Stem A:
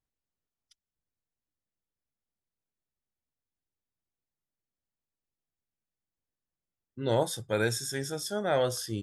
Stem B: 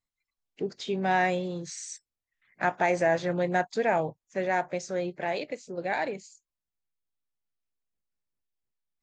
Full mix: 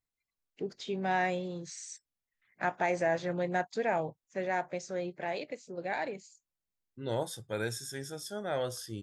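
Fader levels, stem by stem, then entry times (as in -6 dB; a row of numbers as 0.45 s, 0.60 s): -6.5 dB, -5.0 dB; 0.00 s, 0.00 s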